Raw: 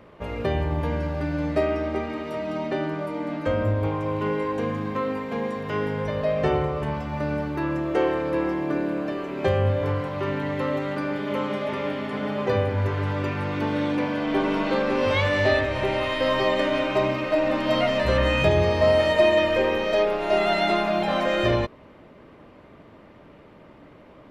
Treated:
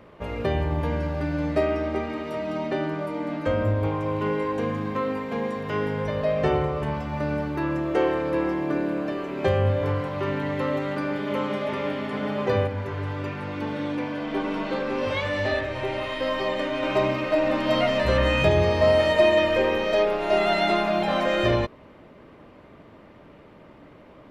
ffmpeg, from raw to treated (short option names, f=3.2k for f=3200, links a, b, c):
-filter_complex "[0:a]asettb=1/sr,asplit=3[a][b][c];[a]atrim=end=12.674[d];[b]atrim=start=12.67:end=16.83,asetpts=PTS-STARTPTS,afade=t=in:d=0.004:c=qsin,afade=t=out:st=4.156:d=0.004:c=qsin,flanger=delay=3.6:depth=4.1:regen=-64:speed=1.1:shape=sinusoidal[e];[c]atrim=start=16.826[f];[d][e]acrossfade=d=0.004:c1=hsin:c2=qsin[g];[g][f]acrossfade=d=0.004:c1=qsin:c2=hsin"